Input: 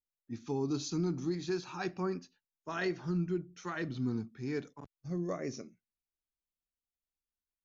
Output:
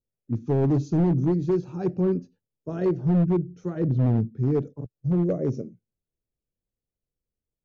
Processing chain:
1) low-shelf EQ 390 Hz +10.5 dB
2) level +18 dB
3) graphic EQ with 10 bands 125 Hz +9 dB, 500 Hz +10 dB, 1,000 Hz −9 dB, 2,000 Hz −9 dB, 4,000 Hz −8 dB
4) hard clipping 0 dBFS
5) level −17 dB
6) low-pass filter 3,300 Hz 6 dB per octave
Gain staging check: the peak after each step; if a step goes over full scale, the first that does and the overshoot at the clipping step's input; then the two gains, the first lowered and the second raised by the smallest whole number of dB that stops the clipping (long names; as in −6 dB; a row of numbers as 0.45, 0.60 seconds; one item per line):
−16.5, +1.5, +7.0, 0.0, −17.0, −17.0 dBFS
step 2, 7.0 dB
step 2 +11 dB, step 5 −10 dB